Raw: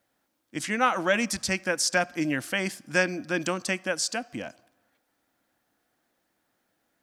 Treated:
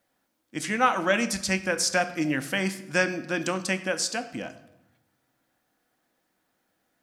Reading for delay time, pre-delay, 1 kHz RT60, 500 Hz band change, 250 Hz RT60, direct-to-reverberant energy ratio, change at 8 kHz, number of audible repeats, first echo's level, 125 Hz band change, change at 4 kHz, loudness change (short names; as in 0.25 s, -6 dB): none, 4 ms, 0.80 s, +0.5 dB, 1.3 s, 8.5 dB, +0.5 dB, none, none, +2.0 dB, +0.5 dB, +0.5 dB